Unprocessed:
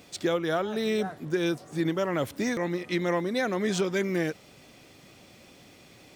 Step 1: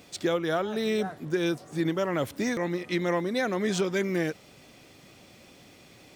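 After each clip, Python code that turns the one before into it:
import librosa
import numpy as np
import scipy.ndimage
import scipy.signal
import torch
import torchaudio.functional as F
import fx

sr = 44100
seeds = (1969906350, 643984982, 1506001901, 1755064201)

y = x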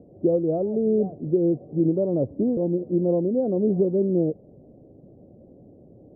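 y = scipy.signal.sosfilt(scipy.signal.butter(6, 600.0, 'lowpass', fs=sr, output='sos'), x)
y = y * 10.0 ** (6.5 / 20.0)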